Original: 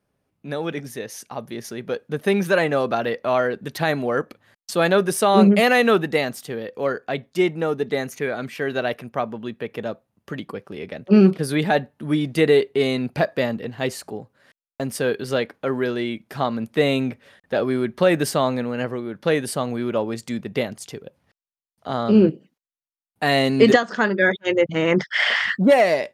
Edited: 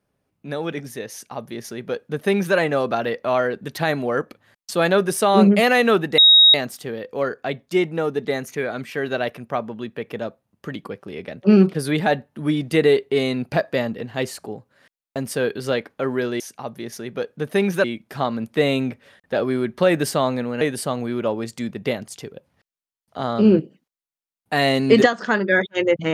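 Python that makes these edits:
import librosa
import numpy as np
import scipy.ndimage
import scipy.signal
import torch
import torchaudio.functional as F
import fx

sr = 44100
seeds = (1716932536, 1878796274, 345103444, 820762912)

y = fx.edit(x, sr, fx.duplicate(start_s=1.12, length_s=1.44, to_s=16.04),
    fx.insert_tone(at_s=6.18, length_s=0.36, hz=3780.0, db=-7.5),
    fx.cut(start_s=18.81, length_s=0.5), tone=tone)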